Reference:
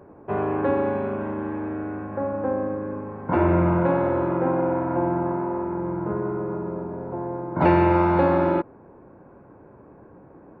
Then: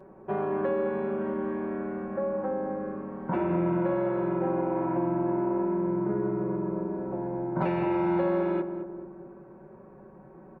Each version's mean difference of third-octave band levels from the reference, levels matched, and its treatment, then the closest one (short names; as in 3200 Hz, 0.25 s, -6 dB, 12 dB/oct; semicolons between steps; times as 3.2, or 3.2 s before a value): 2.5 dB: comb 5.3 ms, depth 99%; compressor 3:1, threshold -21 dBFS, peak gain reduction 8.5 dB; darkening echo 0.215 s, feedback 58%, low-pass 940 Hz, level -7 dB; gain -5.5 dB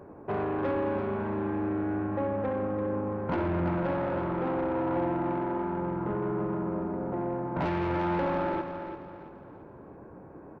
4.0 dB: compressor 2:1, threshold -26 dBFS, peak gain reduction 7.5 dB; soft clip -24.5 dBFS, distortion -13 dB; feedback echo 0.338 s, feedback 38%, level -8.5 dB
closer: first